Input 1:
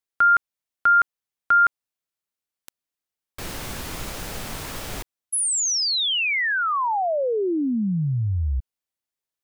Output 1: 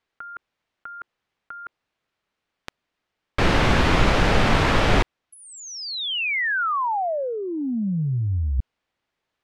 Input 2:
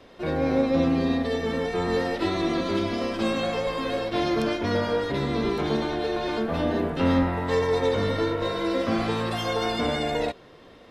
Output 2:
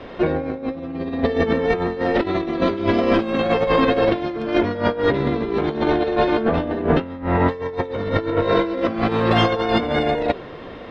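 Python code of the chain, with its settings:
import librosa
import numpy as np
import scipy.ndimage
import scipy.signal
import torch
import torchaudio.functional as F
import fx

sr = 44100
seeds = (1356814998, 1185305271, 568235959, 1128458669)

y = fx.dynamic_eq(x, sr, hz=390.0, q=1.4, threshold_db=-37.0, ratio=4.0, max_db=3)
y = fx.over_compress(y, sr, threshold_db=-28.0, ratio=-0.5)
y = scipy.signal.sosfilt(scipy.signal.butter(2, 2900.0, 'lowpass', fs=sr, output='sos'), y)
y = F.gain(torch.from_numpy(y), 9.0).numpy()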